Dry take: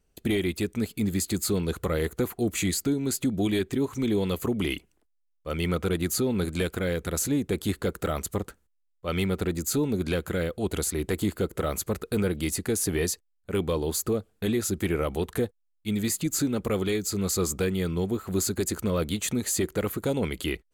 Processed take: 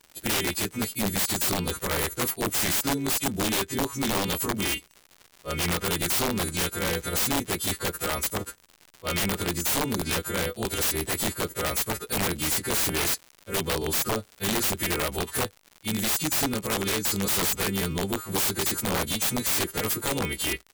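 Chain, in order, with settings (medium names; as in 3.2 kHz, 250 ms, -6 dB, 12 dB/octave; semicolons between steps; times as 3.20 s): partials quantised in pitch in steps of 2 st; integer overflow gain 19.5 dB; crackle 150 per s -36 dBFS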